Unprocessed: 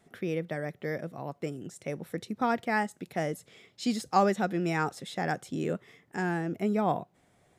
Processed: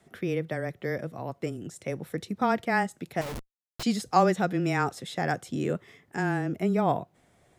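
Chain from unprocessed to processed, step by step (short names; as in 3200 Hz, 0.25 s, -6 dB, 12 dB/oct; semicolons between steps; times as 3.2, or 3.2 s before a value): frequency shift -13 Hz; 3.21–3.83 Schmitt trigger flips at -40 dBFS; gain +2.5 dB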